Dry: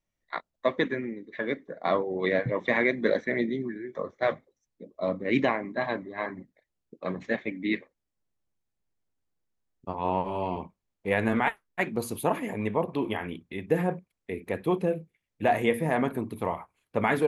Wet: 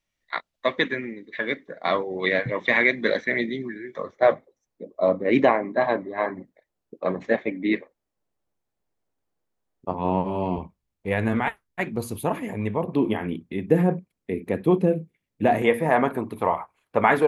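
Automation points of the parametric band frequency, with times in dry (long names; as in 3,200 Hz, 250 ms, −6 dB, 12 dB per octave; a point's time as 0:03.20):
parametric band +9 dB 2.5 octaves
3,100 Hz
from 0:04.16 620 Hz
from 0:09.91 190 Hz
from 0:10.58 62 Hz
from 0:12.86 220 Hz
from 0:15.62 960 Hz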